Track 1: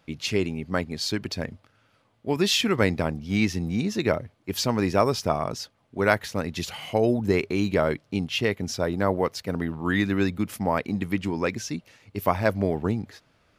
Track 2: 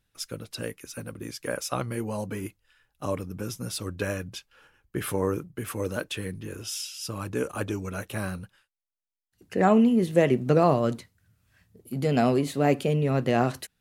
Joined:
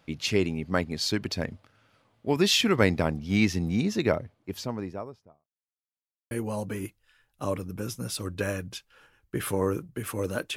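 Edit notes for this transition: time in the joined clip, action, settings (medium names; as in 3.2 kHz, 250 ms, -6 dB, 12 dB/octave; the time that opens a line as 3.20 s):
track 1
3.73–5.48 s: studio fade out
5.48–6.31 s: mute
6.31 s: go over to track 2 from 1.92 s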